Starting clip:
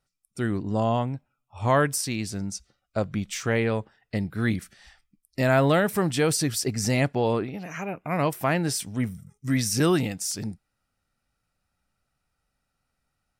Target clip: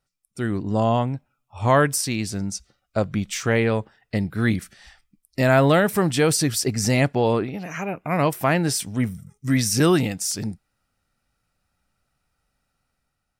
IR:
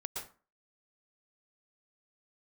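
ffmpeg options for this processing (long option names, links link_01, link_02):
-af "dynaudnorm=framelen=120:gausssize=9:maxgain=4dB"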